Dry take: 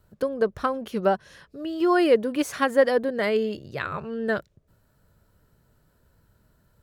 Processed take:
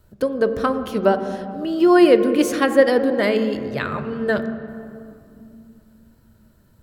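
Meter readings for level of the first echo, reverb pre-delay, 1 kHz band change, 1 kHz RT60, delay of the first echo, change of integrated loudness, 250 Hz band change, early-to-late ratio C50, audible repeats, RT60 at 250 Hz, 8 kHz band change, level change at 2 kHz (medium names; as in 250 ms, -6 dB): no echo, 3 ms, +4.0 dB, 2.3 s, no echo, +6.0 dB, +8.5 dB, 13.5 dB, no echo, 4.0 s, +6.0 dB, +4.5 dB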